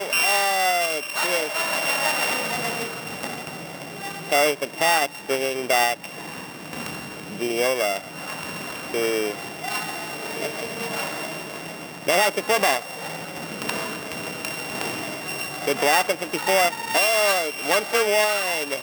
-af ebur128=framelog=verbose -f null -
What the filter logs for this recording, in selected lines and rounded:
Integrated loudness:
  I:         -23.0 LUFS
  Threshold: -33.3 LUFS
Loudness range:
  LRA:         6.5 LU
  Threshold: -44.0 LUFS
  LRA low:   -27.5 LUFS
  LRA high:  -21.0 LUFS